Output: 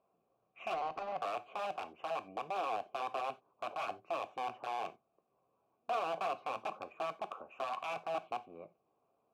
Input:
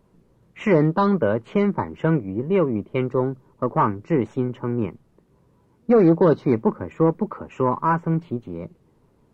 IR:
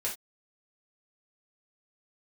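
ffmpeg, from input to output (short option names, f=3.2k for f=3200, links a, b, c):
-filter_complex "[0:a]alimiter=limit=-17dB:level=0:latency=1:release=15,aeval=exprs='(mod(9.44*val(0)+1,2)-1)/9.44':c=same,asplit=3[a][b][c];[a]bandpass=f=730:t=q:w=8,volume=0dB[d];[b]bandpass=f=1.09k:t=q:w=8,volume=-6dB[e];[c]bandpass=f=2.44k:t=q:w=8,volume=-9dB[f];[d][e][f]amix=inputs=3:normalize=0,asettb=1/sr,asplit=3[g][h][i];[g]atrim=end=0.744[j];[h]atrim=start=0.74:end=1.17,asetpts=PTS-STARTPTS,afade=t=in:d=0.004:c=qsin,afade=t=out:st=0.426:d=0.004:c=qsin,adynamicsmooth=sensitivity=2.5:basefreq=560[k];[i]atrim=start=1.166[l];[j][k]acrossfade=d=0.004:c1=hsin:c2=qsin[m];[m][l]acrossfade=d=0.004:c1=qsin:c2=hsin,asplit=2[n][o];[1:a]atrim=start_sample=2205[p];[o][p]afir=irnorm=-1:irlink=0,volume=-12.5dB[q];[n][q]amix=inputs=2:normalize=0,volume=-2.5dB"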